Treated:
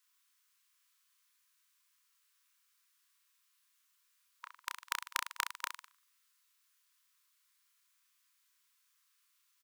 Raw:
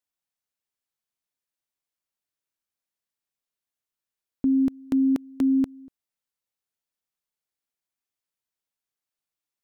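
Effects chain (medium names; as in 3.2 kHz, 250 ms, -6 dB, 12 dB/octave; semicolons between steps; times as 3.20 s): brick-wall FIR high-pass 960 Hz; reverse bouncing-ball echo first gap 30 ms, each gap 1.15×, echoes 5; trim +12.5 dB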